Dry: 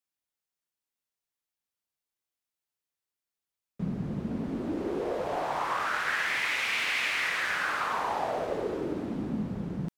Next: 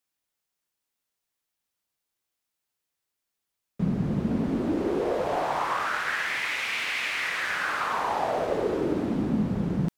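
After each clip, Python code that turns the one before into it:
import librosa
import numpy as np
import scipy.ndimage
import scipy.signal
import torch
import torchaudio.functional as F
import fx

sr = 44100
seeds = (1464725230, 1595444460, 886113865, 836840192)

y = fx.rider(x, sr, range_db=10, speed_s=0.5)
y = y * 10.0 ** (3.0 / 20.0)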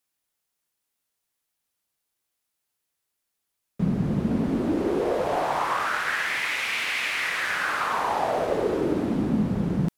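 y = fx.peak_eq(x, sr, hz=11000.0, db=4.0, octaves=0.63)
y = y * 10.0 ** (2.0 / 20.0)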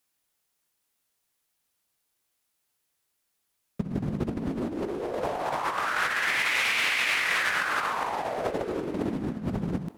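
y = fx.over_compress(x, sr, threshold_db=-28.0, ratio=-0.5)
y = fx.echo_feedback(y, sr, ms=889, feedback_pct=37, wet_db=-23.5)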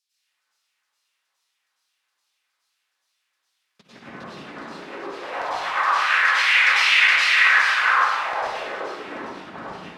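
y = fx.filter_lfo_bandpass(x, sr, shape='saw_down', hz=2.4, low_hz=970.0, high_hz=5300.0, q=2.2)
y = fx.rev_plate(y, sr, seeds[0], rt60_s=1.1, hf_ratio=0.85, predelay_ms=85, drr_db=-9.5)
y = y * 10.0 ** (4.5 / 20.0)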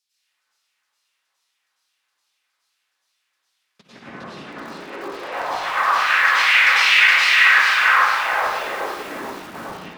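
y = fx.echo_crushed(x, sr, ms=442, feedback_pct=35, bits=6, wet_db=-7.5)
y = y * 10.0 ** (2.0 / 20.0)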